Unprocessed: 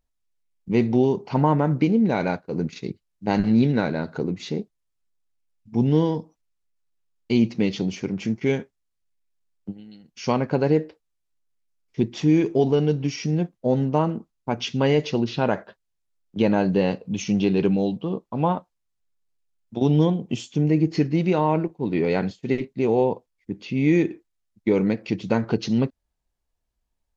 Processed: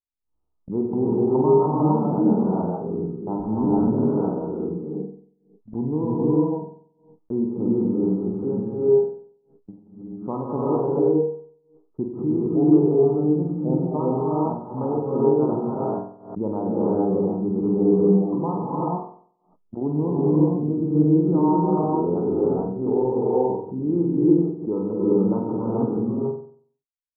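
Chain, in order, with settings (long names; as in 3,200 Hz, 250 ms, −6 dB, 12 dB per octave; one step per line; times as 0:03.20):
Chebyshev low-pass with heavy ripple 1,300 Hz, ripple 6 dB
reverb whose tail is shaped and stops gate 480 ms rising, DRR −5.5 dB
downward expander −37 dBFS
on a send: flutter between parallel walls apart 8 metres, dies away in 0.52 s
on the sum: background raised ahead of every attack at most 110 dB per second
level −5 dB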